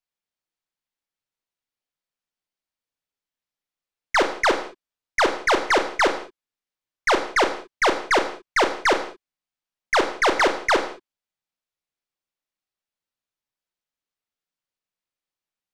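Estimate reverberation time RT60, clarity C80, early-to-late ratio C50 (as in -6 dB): not exponential, 12.5 dB, 9.5 dB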